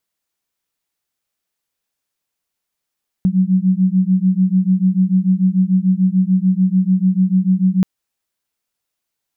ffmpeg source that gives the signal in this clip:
ffmpeg -f lavfi -i "aevalsrc='0.188*(sin(2*PI*183*t)+sin(2*PI*189.8*t))':duration=4.58:sample_rate=44100" out.wav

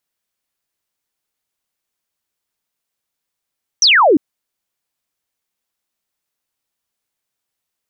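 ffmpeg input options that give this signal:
ffmpeg -f lavfi -i "aevalsrc='0.447*clip(t/0.002,0,1)*clip((0.35-t)/0.002,0,1)*sin(2*PI*6200*0.35/log(260/6200)*(exp(log(260/6200)*t/0.35)-1))':duration=0.35:sample_rate=44100" out.wav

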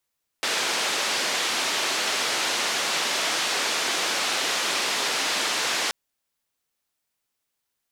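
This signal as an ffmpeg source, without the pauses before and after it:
ffmpeg -f lavfi -i "anoisesrc=color=white:duration=5.48:sample_rate=44100:seed=1,highpass=frequency=320,lowpass=frequency=5100,volume=-14.3dB" out.wav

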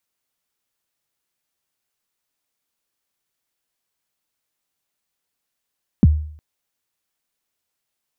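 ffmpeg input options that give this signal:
ffmpeg -f lavfi -i "aevalsrc='0.562*pow(10,-3*t/0.57)*sin(2*PI*(270*0.031/log(76/270)*(exp(log(76/270)*min(t,0.031)/0.031)-1)+76*max(t-0.031,0)))':duration=0.36:sample_rate=44100" out.wav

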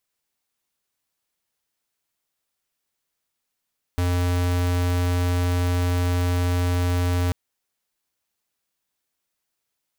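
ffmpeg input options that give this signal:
ffmpeg -f lavfi -i "aevalsrc='0.0841*(2*lt(mod(88.7*t,1),0.5)-1)':duration=3.34:sample_rate=44100" out.wav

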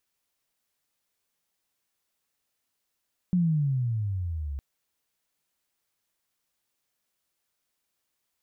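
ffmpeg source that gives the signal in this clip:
ffmpeg -f lavfi -i "aevalsrc='pow(10,(-19.5-11*t/1.26)/20)*sin(2*PI*184*1.26/(-17.5*log(2)/12)*(exp(-17.5*log(2)/12*t/1.26)-1))':duration=1.26:sample_rate=44100" out.wav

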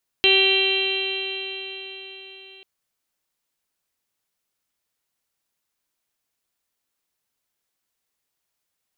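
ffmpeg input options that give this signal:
ffmpeg -f lavfi -i "aevalsrc='0.1*pow(10,-3*t/4.54)*sin(2*PI*384.16*t)+0.0266*pow(10,-3*t/4.54)*sin(2*PI*769.27*t)+0.01*pow(10,-3*t/4.54)*sin(2*PI*1156.29*t)+0.0112*pow(10,-3*t/4.54)*sin(2*PI*1546.17*t)+0.0251*pow(10,-3*t/4.54)*sin(2*PI*1939.82*t)+0.0562*pow(10,-3*t/4.54)*sin(2*PI*2338.17*t)+0.141*pow(10,-3*t/4.54)*sin(2*PI*2742.12*t)+0.141*pow(10,-3*t/4.54)*sin(2*PI*3152.54*t)+0.0158*pow(10,-3*t/4.54)*sin(2*PI*3570.28*t)+0.0841*pow(10,-3*t/4.54)*sin(2*PI*3996.18*t)':duration=2.39:sample_rate=44100" out.wav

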